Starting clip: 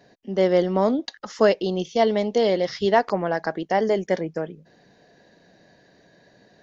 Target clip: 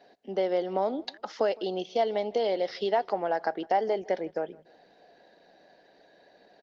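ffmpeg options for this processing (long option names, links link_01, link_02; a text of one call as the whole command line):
ffmpeg -i in.wav -af "acompressor=threshold=-24dB:ratio=3,highpass=360,equalizer=frequency=790:width_type=q:width=4:gain=6,equalizer=frequency=1100:width_type=q:width=4:gain=-6,equalizer=frequency=1800:width_type=q:width=4:gain=-4,lowpass=frequency=5100:width=0.5412,lowpass=frequency=5100:width=1.3066,aecho=1:1:160|320|480:0.0668|0.0267|0.0107" -ar 48000 -c:a libopus -b:a 24k out.opus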